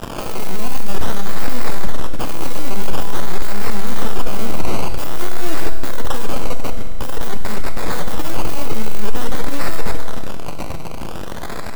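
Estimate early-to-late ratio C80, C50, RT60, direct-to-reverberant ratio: 9.0 dB, 8.0 dB, 1.9 s, 6.5 dB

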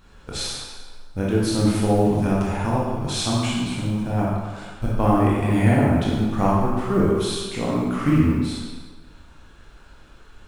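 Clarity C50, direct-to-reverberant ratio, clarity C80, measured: -1.5 dB, -5.5 dB, 1.0 dB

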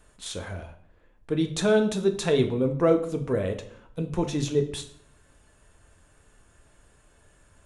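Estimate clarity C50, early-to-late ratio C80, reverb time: 11.5 dB, 15.0 dB, 0.60 s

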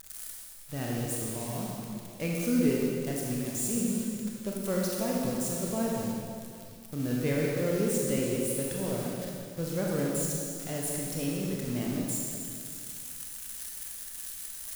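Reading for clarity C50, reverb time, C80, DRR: -1.5 dB, 2.3 s, 0.0 dB, -3.5 dB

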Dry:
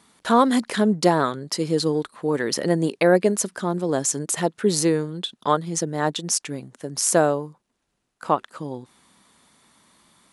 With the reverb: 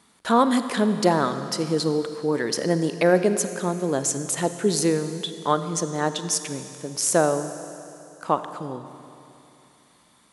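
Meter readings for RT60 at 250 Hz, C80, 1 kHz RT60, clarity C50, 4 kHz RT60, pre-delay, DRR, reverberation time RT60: 2.9 s, 10.5 dB, 2.9 s, 10.0 dB, 2.9 s, 36 ms, 10.0 dB, 2.9 s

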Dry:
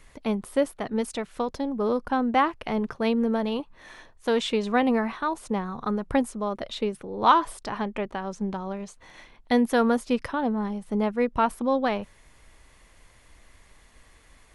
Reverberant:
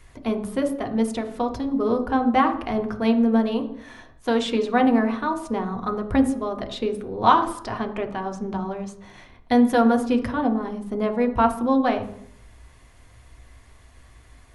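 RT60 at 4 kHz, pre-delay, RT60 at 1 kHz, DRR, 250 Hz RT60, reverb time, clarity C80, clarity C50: 0.55 s, 3 ms, 0.60 s, 3.0 dB, 0.80 s, 0.65 s, 14.0 dB, 11.0 dB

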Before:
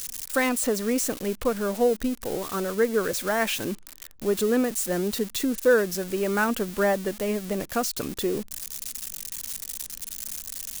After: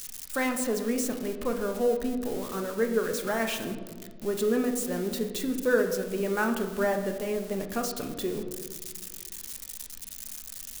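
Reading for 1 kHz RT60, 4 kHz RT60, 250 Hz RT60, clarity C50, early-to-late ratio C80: 1.3 s, 0.90 s, 2.2 s, 8.0 dB, 10.0 dB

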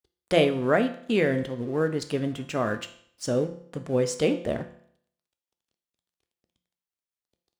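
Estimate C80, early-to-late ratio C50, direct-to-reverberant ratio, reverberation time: 15.0 dB, 12.0 dB, 7.5 dB, 0.60 s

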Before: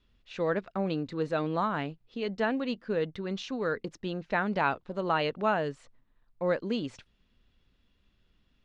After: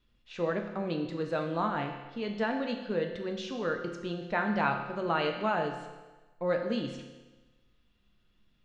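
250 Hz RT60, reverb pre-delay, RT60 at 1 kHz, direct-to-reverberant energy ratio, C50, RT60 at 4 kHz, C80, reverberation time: 1.2 s, 6 ms, 1.2 s, 3.0 dB, 6.5 dB, 1.2 s, 8.0 dB, 1.2 s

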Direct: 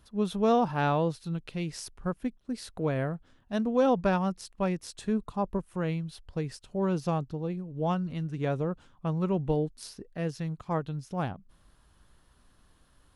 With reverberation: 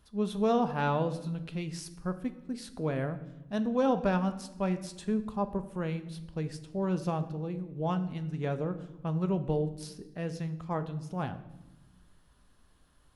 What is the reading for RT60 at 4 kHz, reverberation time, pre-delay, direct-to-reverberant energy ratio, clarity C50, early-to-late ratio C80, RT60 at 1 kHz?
0.75 s, 1.0 s, 5 ms, 9.0 dB, 13.5 dB, 15.5 dB, 0.90 s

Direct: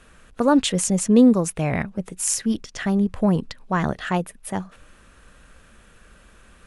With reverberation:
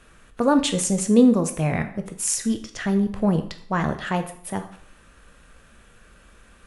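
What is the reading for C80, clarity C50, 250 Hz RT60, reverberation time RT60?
15.0 dB, 11.5 dB, 0.55 s, 0.55 s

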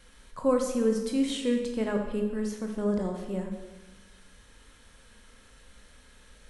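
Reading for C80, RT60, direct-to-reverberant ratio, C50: 7.5 dB, 1.2 s, 2.5 dB, 4.5 dB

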